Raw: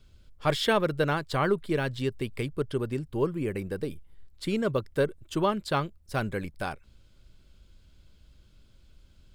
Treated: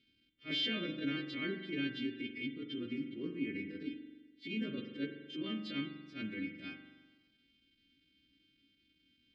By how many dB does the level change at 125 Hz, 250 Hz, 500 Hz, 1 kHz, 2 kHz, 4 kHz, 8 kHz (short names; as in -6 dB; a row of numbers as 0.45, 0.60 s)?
-17.5 dB, -6.0 dB, -18.5 dB, -25.0 dB, -8.0 dB, -3.0 dB, under -20 dB